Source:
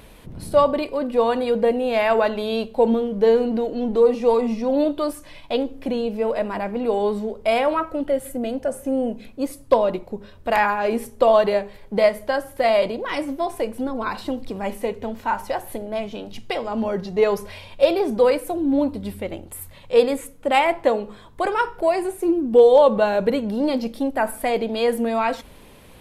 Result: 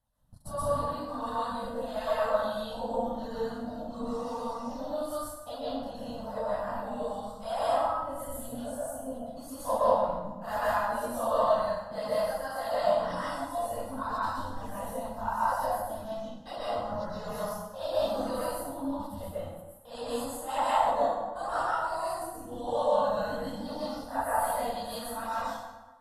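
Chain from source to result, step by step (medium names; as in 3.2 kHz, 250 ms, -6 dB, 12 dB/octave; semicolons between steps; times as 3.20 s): phase randomisation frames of 200 ms; reverb removal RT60 1.3 s; gate -33 dBFS, range -24 dB; harmonic-percussive split harmonic -13 dB; static phaser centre 960 Hz, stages 4; plate-style reverb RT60 1.2 s, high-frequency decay 0.65×, pre-delay 110 ms, DRR -7 dB; trim -3 dB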